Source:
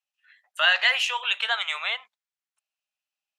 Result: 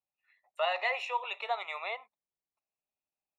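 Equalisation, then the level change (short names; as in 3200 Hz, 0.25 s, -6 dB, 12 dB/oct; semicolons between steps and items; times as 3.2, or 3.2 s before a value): running mean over 28 samples; +4.5 dB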